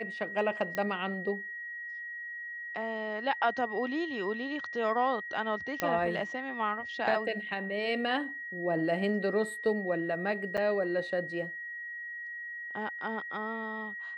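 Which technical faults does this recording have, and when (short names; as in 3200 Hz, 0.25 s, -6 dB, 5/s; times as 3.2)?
tone 1900 Hz -38 dBFS
0.75 pop -20 dBFS
5.8 pop -14 dBFS
10.57–10.58 gap 6.9 ms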